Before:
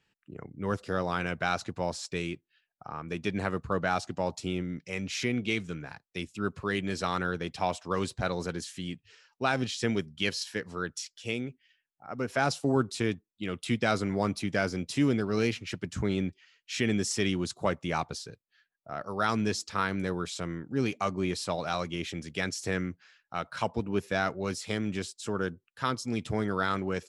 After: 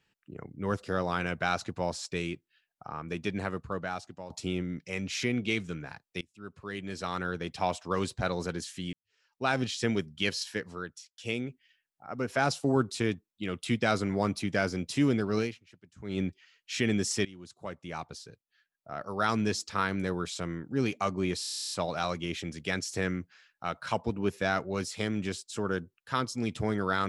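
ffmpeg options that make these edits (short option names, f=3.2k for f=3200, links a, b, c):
-filter_complex "[0:a]asplit=18[a][b][c][d][e][f][g][h][i][j][k][l][m][n][o][p][q][r];[a]atrim=end=4.3,asetpts=PTS-STARTPTS,afade=t=out:st=3.07:d=1.23:silence=0.188365[s];[b]atrim=start=4.3:end=6.21,asetpts=PTS-STARTPTS,afade=t=in:d=0.004:c=hsin:silence=0.188365,afade=t=out:st=1.906:d=0.004:c=hsin:silence=0.0668344[t];[c]atrim=start=6.21:end=8.93,asetpts=PTS-STARTPTS,afade=t=in:d=1.44:silence=0.0668344,afade=t=out:st=2.716:d=0.004:c=hsin[u];[d]atrim=start=8.93:end=11.18,asetpts=PTS-STARTPTS,afade=t=in:d=0.57:c=qua,afade=t=out:st=1.63:d=0.62[v];[e]atrim=start=11.18:end=15.64,asetpts=PTS-STARTPTS,afade=t=in:d=0.004:c=hsin,afade=t=out:st=4.2:d=0.26:c=qua:silence=0.0841395[w];[f]atrim=start=15.64:end=15.94,asetpts=PTS-STARTPTS,volume=-21.5dB[x];[g]atrim=start=15.94:end=17.25,asetpts=PTS-STARTPTS,afade=t=in:d=0.26:c=qua:silence=0.0841395,afade=t=out:st=1.306:d=0.004:c=hsin:silence=0.0794328[y];[h]atrim=start=17.25:end=21.442,asetpts=PTS-STARTPTS,afade=t=in:d=2.02:silence=0.0794328[z];[i]atrim=start=21.408:end=21.442[aa];[j]atrim=start=21.408:end=21.442[ab];[k]atrim=start=21.408:end=21.442[ac];[l]atrim=start=21.408:end=21.442[ad];[m]atrim=start=21.408:end=21.442[ae];[n]atrim=start=21.408:end=21.442[af];[o]atrim=start=21.408:end=21.442[ag];[p]atrim=start=21.408:end=21.442[ah];[q]atrim=start=21.408:end=21.442[ai];[r]atrim=start=21.408[aj];[s][t][u][v][w][x][y][z]concat=n=8:v=0:a=1[ak];[ak][aa]acrossfade=d=0.004:c1=hsin:c2=hsin[al];[al][ab]acrossfade=d=0.004:c1=hsin:c2=hsin[am];[am][ac]acrossfade=d=0.004:c1=hsin:c2=hsin[an];[an][ad]acrossfade=d=0.004:c1=hsin:c2=hsin[ao];[ao][ae]acrossfade=d=0.004:c1=hsin:c2=hsin[ap];[ap][af]acrossfade=d=0.004:c1=hsin:c2=hsin[aq];[aq][ag]acrossfade=d=0.004:c1=hsin:c2=hsin[ar];[ar][ah]acrossfade=d=0.004:c1=hsin:c2=hsin[as];[as][ai]acrossfade=d=0.004:c1=hsin:c2=hsin[at];[at][aj]acrossfade=d=0.004:c1=hsin:c2=hsin"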